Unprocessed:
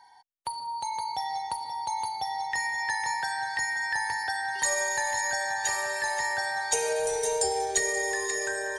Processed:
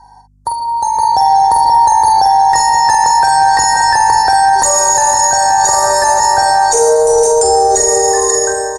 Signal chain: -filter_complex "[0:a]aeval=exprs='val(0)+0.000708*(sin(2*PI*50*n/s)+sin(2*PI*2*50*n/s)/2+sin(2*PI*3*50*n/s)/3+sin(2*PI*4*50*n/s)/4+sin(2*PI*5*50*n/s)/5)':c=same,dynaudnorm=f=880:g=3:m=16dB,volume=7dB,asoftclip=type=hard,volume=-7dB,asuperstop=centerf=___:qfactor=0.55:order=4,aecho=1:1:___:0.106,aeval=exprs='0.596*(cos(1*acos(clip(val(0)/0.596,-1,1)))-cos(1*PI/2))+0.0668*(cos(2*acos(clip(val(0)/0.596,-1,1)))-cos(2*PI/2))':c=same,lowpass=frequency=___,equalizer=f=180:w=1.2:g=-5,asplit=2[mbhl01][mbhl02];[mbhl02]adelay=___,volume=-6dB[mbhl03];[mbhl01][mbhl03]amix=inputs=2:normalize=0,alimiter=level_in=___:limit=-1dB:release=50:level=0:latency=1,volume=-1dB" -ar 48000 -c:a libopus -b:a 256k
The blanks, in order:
2700, 460, 8.2k, 47, 16dB